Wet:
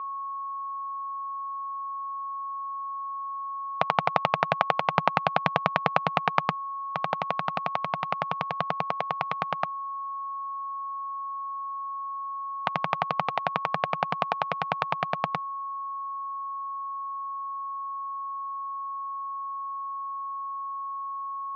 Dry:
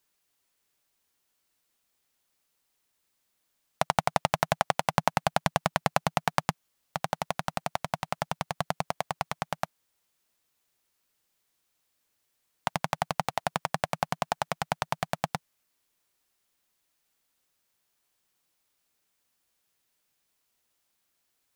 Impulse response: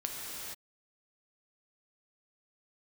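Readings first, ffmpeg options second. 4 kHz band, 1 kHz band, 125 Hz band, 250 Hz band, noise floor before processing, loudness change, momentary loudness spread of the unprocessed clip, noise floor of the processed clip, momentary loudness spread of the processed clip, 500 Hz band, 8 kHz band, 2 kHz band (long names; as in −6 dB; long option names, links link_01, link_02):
−1.0 dB, +5.5 dB, −1.5 dB, −0.5 dB, −77 dBFS, +1.0 dB, 7 LU, −34 dBFS, 8 LU, +1.5 dB, below −15 dB, +2.5 dB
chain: -af "aeval=exprs='val(0)+0.0158*sin(2*PI*1100*n/s)':channel_layout=same,highpass=120,equalizer=frequency=460:width_type=q:width=4:gain=6,equalizer=frequency=1200:width_type=q:width=4:gain=7,equalizer=frequency=2400:width_type=q:width=4:gain=5,lowpass=frequency=3900:width=0.5412,lowpass=frequency=3900:width=1.3066"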